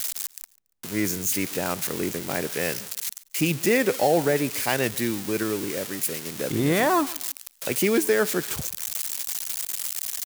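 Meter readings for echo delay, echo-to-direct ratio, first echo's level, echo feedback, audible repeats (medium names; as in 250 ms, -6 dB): 142 ms, -21.5 dB, -22.0 dB, 31%, 2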